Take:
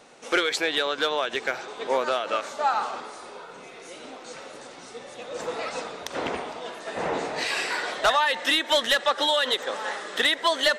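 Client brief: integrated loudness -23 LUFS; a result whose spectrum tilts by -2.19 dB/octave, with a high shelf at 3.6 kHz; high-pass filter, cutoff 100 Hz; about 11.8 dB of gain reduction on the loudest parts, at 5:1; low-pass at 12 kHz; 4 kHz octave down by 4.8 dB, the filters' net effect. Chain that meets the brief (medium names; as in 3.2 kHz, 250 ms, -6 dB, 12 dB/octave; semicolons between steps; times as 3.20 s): high-pass 100 Hz; low-pass 12 kHz; treble shelf 3.6 kHz -4 dB; peaking EQ 4 kHz -3.5 dB; compression 5:1, threshold -32 dBFS; trim +13 dB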